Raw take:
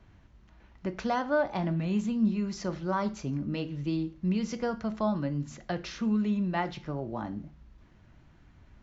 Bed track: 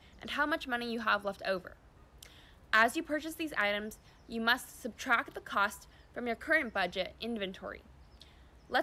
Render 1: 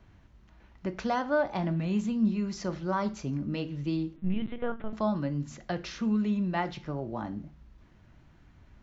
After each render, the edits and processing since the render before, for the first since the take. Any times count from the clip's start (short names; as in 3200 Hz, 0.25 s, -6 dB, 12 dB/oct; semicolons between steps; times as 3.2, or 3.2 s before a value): 4.16–4.93 LPC vocoder at 8 kHz pitch kept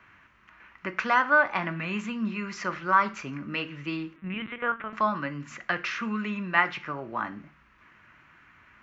HPF 280 Hz 6 dB/oct; band shelf 1700 Hz +14.5 dB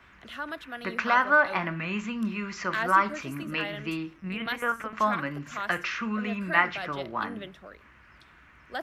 add bed track -4.5 dB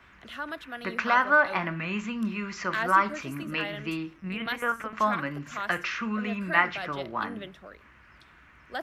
nothing audible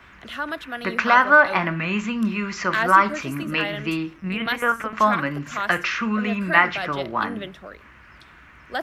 gain +7 dB; limiter -2 dBFS, peak gain reduction 2 dB